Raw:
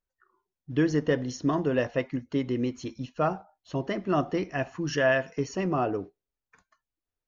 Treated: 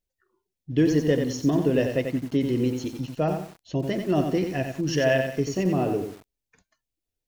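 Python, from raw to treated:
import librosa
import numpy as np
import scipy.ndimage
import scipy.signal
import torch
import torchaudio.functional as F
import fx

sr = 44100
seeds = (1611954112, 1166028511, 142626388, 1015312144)

y = fx.peak_eq(x, sr, hz=1200.0, db=-15.0, octaves=0.97)
y = fx.echo_crushed(y, sr, ms=90, feedback_pct=35, bits=8, wet_db=-6)
y = y * librosa.db_to_amplitude(4.5)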